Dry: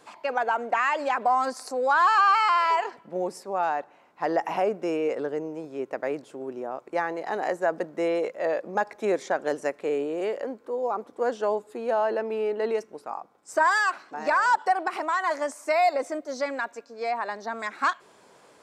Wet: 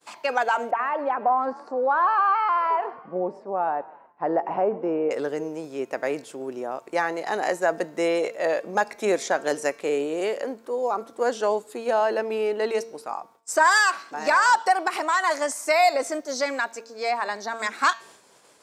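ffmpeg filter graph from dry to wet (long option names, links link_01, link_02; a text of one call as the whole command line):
ffmpeg -i in.wav -filter_complex "[0:a]asettb=1/sr,asplit=3[link_01][link_02][link_03];[link_01]atrim=end=0.714[link_04];[link_02]atrim=start=0.71:end=5.11,asetpts=PTS-STARTPTS,afade=type=in:duration=0.004:curve=qsin,afade=type=out:start_time=4.396:duration=0.004:curve=qsin,lowpass=1000,asplit=5[link_05][link_06][link_07][link_08][link_09];[link_06]adelay=126,afreqshift=46,volume=-21dB[link_10];[link_07]adelay=252,afreqshift=92,volume=-26.2dB[link_11];[link_08]adelay=378,afreqshift=138,volume=-31.4dB[link_12];[link_09]adelay=504,afreqshift=184,volume=-36.6dB[link_13];[link_05][link_10][link_11][link_12][link_13]amix=inputs=5:normalize=0,atrim=end_sample=194040[link_14];[link_03]atrim=start=5.106[link_15];[link_04][link_14]acrossfade=duration=0.004:curve1=hsin:curve2=qsin[link_16];[link_16][link_15]acrossfade=duration=0.004:curve1=qsin:curve2=hsin,agate=range=-33dB:threshold=-49dB:ratio=3:detection=peak,highshelf=frequency=3100:gain=11,bandreject=frequency=227.2:width_type=h:width=4,bandreject=frequency=454.4:width_type=h:width=4,bandreject=frequency=681.6:width_type=h:width=4,bandreject=frequency=908.8:width_type=h:width=4,bandreject=frequency=1136:width_type=h:width=4,bandreject=frequency=1363.2:width_type=h:width=4,bandreject=frequency=1590.4:width_type=h:width=4,bandreject=frequency=1817.6:width_type=h:width=4,bandreject=frequency=2044.8:width_type=h:width=4,bandreject=frequency=2272:width_type=h:width=4,bandreject=frequency=2499.2:width_type=h:width=4,bandreject=frequency=2726.4:width_type=h:width=4,bandreject=frequency=2953.6:width_type=h:width=4,bandreject=frequency=3180.8:width_type=h:width=4,bandreject=frequency=3408:width_type=h:width=4,bandreject=frequency=3635.2:width_type=h:width=4,bandreject=frequency=3862.4:width_type=h:width=4,bandreject=frequency=4089.6:width_type=h:width=4,bandreject=frequency=4316.8:width_type=h:width=4,bandreject=frequency=4544:width_type=h:width=4,bandreject=frequency=4771.2:width_type=h:width=4,bandreject=frequency=4998.4:width_type=h:width=4,bandreject=frequency=5225.6:width_type=h:width=4,bandreject=frequency=5452.8:width_type=h:width=4,bandreject=frequency=5680:width_type=h:width=4,bandreject=frequency=5907.2:width_type=h:width=4,bandreject=frequency=6134.4:width_type=h:width=4,bandreject=frequency=6361.6:width_type=h:width=4,bandreject=frequency=6588.8:width_type=h:width=4,bandreject=frequency=6816:width_type=h:width=4,volume=2dB" out.wav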